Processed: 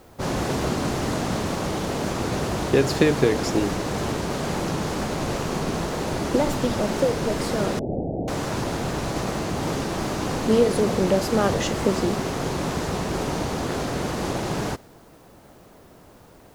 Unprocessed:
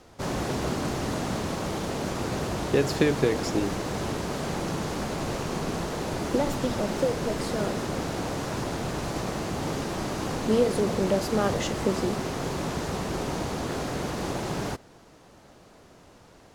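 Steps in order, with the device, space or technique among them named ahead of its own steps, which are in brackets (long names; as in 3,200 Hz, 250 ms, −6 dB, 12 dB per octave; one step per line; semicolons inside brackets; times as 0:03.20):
plain cassette with noise reduction switched in (one half of a high-frequency compander decoder only; tape wow and flutter; white noise bed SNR 37 dB)
0:07.79–0:08.28: Butterworth low-pass 760 Hz 72 dB per octave
level +4 dB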